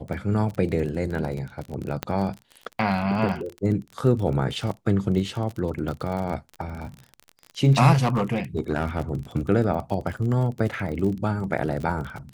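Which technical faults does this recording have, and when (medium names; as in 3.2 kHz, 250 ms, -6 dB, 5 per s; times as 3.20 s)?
crackle 31 per s -30 dBFS
2.03 s: pop -11 dBFS
7.92–9.01 s: clipped -16.5 dBFS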